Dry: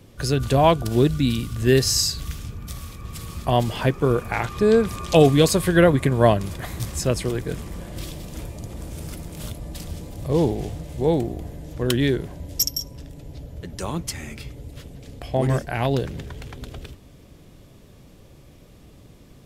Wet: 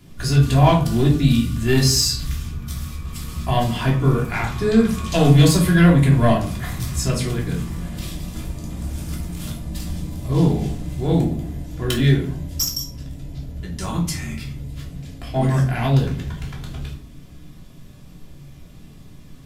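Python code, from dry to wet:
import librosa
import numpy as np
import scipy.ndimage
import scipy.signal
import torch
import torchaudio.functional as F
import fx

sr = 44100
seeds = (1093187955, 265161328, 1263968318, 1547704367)

y = fx.peak_eq(x, sr, hz=500.0, db=-8.0, octaves=1.3)
y = 10.0 ** (-12.0 / 20.0) * np.tanh(y / 10.0 ** (-12.0 / 20.0))
y = fx.room_shoebox(y, sr, seeds[0], volume_m3=380.0, walls='furnished', distance_m=3.1)
y = F.gain(torch.from_numpy(y), -1.0).numpy()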